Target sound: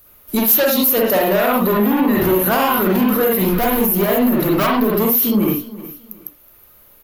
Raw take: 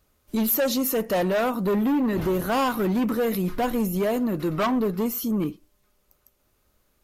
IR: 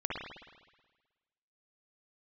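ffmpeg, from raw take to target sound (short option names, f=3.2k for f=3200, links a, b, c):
-filter_complex "[0:a]lowshelf=f=390:g=-6,asettb=1/sr,asplit=3[a][b][c];[a]atrim=end=3.314[d];[b]atrim=start=3.31:end=4.95,asetpts=PTS-STARTPTS,afade=t=in:d=0.004:c=qsin,afade=t=out:st=1.636:d=0.004:c=qsin,asoftclip=type=hard:threshold=-26dB[e];[c]atrim=start=4.946[f];[d][e]acrossfade=d=0.004:c1=hsin:c2=qsin[g];[g][f]acrossfade=d=0.004:c1=qsin:c2=hsin,aexciter=amount=8.7:drive=2.4:freq=11k,asoftclip=type=tanh:threshold=-8dB,aecho=1:1:370|740:0.106|0.0307[h];[1:a]atrim=start_sample=2205,afade=t=out:st=0.17:d=0.01,atrim=end_sample=7938,asetrate=48510,aresample=44100[i];[h][i]afir=irnorm=-1:irlink=0,alimiter=level_in=19.5dB:limit=-1dB:release=50:level=0:latency=1,volume=-6.5dB"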